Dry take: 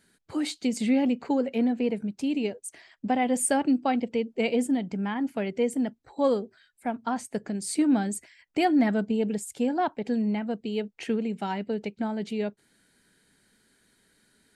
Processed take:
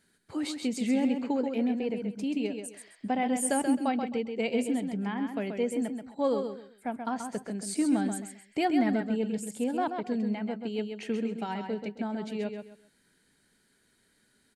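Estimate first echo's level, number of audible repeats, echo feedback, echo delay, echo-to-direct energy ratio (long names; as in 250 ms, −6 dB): −6.5 dB, 3, 26%, 132 ms, −6.0 dB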